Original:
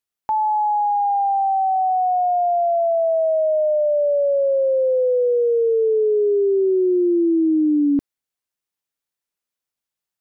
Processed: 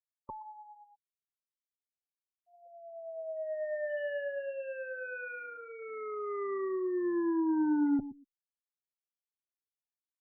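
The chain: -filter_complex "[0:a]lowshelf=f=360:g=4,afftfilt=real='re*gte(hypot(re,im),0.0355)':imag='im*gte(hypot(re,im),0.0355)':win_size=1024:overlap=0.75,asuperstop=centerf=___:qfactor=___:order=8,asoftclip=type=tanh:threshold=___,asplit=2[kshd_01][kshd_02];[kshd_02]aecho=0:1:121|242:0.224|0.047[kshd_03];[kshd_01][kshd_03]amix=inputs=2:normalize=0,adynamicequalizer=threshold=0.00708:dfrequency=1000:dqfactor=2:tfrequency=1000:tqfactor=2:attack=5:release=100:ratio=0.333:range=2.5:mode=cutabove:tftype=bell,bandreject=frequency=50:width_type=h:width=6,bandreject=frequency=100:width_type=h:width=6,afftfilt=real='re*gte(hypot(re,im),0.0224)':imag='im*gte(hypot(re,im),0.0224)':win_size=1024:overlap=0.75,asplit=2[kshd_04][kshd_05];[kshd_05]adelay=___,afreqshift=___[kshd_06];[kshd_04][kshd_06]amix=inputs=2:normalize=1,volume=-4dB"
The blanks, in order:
760, 2.2, -19dB, 4.9, -0.38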